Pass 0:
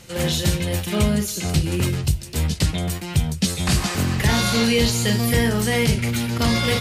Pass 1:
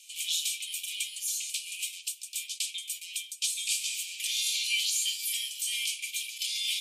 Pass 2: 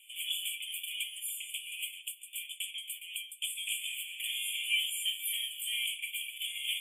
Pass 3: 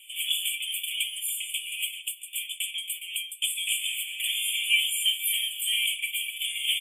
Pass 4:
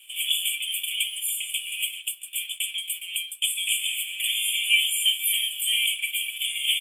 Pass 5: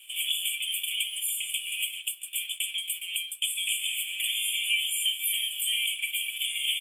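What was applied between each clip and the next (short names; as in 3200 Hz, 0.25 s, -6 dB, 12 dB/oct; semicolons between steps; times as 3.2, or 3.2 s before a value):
rippled Chebyshev high-pass 2300 Hz, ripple 6 dB; gain -1 dB
FFT band-reject 3500–7000 Hz; bell 7500 Hz -12.5 dB 0.45 oct
comb 3.5 ms, depth 41%; gain +7 dB
HPF 1500 Hz 12 dB/oct; in parallel at -4 dB: crossover distortion -49 dBFS; on the sum: gain -1 dB
compressor 2:1, threshold -28 dBFS, peak gain reduction 7.5 dB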